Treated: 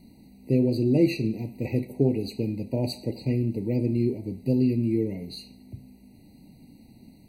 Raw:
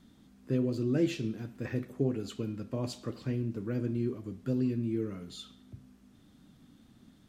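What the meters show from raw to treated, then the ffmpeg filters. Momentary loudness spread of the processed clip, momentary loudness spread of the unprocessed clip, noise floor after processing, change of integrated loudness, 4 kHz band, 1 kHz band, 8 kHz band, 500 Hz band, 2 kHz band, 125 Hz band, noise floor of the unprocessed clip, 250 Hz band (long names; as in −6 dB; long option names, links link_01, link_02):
16 LU, 15 LU, −53 dBFS, +7.5 dB, +6.0 dB, +3.5 dB, can't be measured, +7.5 dB, +4.0 dB, +7.5 dB, −61 dBFS, +7.5 dB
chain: -af "aexciter=amount=1.4:drive=2.2:freq=3500,afftfilt=real='re*eq(mod(floor(b*sr/1024/960),2),0)':imag='im*eq(mod(floor(b*sr/1024/960),2),0)':win_size=1024:overlap=0.75,volume=7.5dB"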